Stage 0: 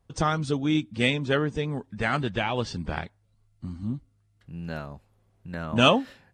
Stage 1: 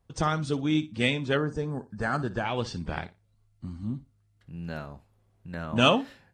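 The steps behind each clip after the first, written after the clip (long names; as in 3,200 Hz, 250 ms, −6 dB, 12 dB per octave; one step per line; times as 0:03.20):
flutter between parallel walls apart 10 metres, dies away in 0.22 s
gain on a spectral selection 0:01.38–0:02.45, 1,800–4,100 Hz −13 dB
level −2 dB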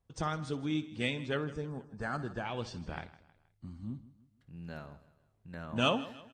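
repeating echo 158 ms, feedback 42%, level −17.5 dB
level −8 dB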